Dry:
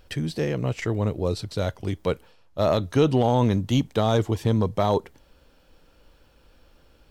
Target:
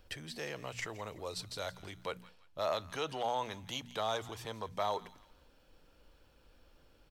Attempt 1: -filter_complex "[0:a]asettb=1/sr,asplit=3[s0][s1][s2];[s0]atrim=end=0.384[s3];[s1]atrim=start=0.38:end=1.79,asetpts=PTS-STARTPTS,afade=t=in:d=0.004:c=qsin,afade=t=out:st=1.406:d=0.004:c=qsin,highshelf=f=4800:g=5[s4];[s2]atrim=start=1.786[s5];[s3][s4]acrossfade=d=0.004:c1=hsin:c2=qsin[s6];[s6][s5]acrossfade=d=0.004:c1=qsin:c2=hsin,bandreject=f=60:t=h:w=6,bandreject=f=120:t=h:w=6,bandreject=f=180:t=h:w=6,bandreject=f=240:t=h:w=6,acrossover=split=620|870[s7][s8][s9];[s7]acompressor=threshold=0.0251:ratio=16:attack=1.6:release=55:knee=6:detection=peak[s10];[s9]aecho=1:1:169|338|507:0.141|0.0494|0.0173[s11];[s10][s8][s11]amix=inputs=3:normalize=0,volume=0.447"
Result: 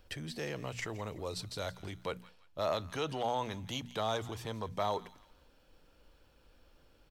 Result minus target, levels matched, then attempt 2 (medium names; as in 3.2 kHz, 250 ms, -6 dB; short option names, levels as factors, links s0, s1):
compression: peak gain reduction -7 dB
-filter_complex "[0:a]asettb=1/sr,asplit=3[s0][s1][s2];[s0]atrim=end=0.384[s3];[s1]atrim=start=0.38:end=1.79,asetpts=PTS-STARTPTS,afade=t=in:d=0.004:c=qsin,afade=t=out:st=1.406:d=0.004:c=qsin,highshelf=f=4800:g=5[s4];[s2]atrim=start=1.786[s5];[s3][s4]acrossfade=d=0.004:c1=hsin:c2=qsin[s6];[s6][s5]acrossfade=d=0.004:c1=qsin:c2=hsin,bandreject=f=60:t=h:w=6,bandreject=f=120:t=h:w=6,bandreject=f=180:t=h:w=6,bandreject=f=240:t=h:w=6,acrossover=split=620|870[s7][s8][s9];[s7]acompressor=threshold=0.0106:ratio=16:attack=1.6:release=55:knee=6:detection=peak[s10];[s9]aecho=1:1:169|338|507:0.141|0.0494|0.0173[s11];[s10][s8][s11]amix=inputs=3:normalize=0,volume=0.447"